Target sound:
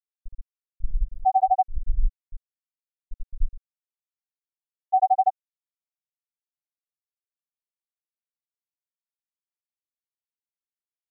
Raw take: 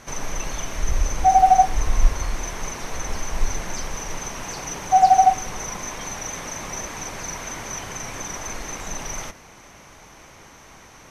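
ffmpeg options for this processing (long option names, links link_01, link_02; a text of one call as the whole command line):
ffmpeg -i in.wav -filter_complex "[0:a]bandreject=frequency=60:width_type=h:width=6,bandreject=frequency=120:width_type=h:width=6,bandreject=frequency=180:width_type=h:width=6,aecho=1:1:6.4:0.36,asplit=2[link_01][link_02];[link_02]acrusher=samples=15:mix=1:aa=0.000001:lfo=1:lforange=15:lforate=2.5,volume=-11dB[link_03];[link_01][link_03]amix=inputs=2:normalize=0,aeval=exprs='val(0)+0.00251*(sin(2*PI*50*n/s)+sin(2*PI*2*50*n/s)/2+sin(2*PI*3*50*n/s)/3+sin(2*PI*4*50*n/s)/4+sin(2*PI*5*50*n/s)/5)':channel_layout=same,equalizer=frequency=390:width=0.72:gain=-2.5,afftfilt=real='re*gte(hypot(re,im),2.51)':imag='im*gte(hypot(re,im),2.51)':win_size=1024:overlap=0.75,acompressor=threshold=-12dB:ratio=6,volume=-3.5dB" out.wav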